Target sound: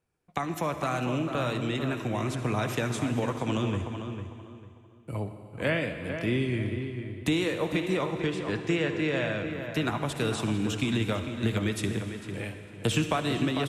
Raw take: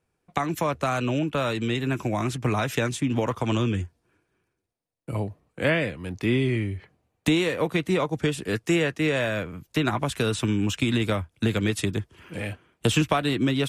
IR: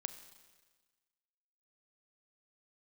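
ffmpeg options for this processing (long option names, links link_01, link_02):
-filter_complex "[0:a]asettb=1/sr,asplit=3[link_01][link_02][link_03];[link_01]atrim=end=8.114[link_04];[link_02]atrim=start=8.11:end=9.45,asetpts=PTS-STARTPTS,afade=type=in:duration=0.004:curve=qsin,afade=type=out:start_time=1.336:duration=0.004:curve=qsin,lowpass=5600[link_05];[link_03]atrim=start=9.446[link_06];[link_04][link_05]acrossfade=duration=0.004:curve1=hsin:curve2=qsin[link_07];[link_07][link_06]acrossfade=duration=0.004:curve1=qsin:curve2=hsin,asplit=2[link_08][link_09];[link_09]adelay=449,lowpass=frequency=2400:poles=1,volume=-7.5dB,asplit=2[link_10][link_11];[link_11]adelay=449,lowpass=frequency=2400:poles=1,volume=0.28,asplit=2[link_12][link_13];[link_13]adelay=449,lowpass=frequency=2400:poles=1,volume=0.28[link_14];[link_08][link_10][link_12][link_14]amix=inputs=4:normalize=0[link_15];[1:a]atrim=start_sample=2205,asetrate=26460,aresample=44100[link_16];[link_15][link_16]afir=irnorm=-1:irlink=0,volume=-5dB"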